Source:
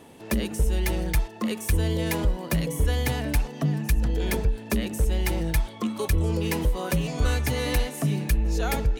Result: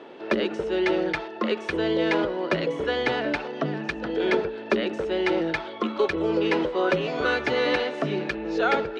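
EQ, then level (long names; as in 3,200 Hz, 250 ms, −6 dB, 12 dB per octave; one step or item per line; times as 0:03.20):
loudspeaker in its box 320–4,100 Hz, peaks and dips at 370 Hz +9 dB, 580 Hz +5 dB, 1,400 Hz +8 dB
+4.0 dB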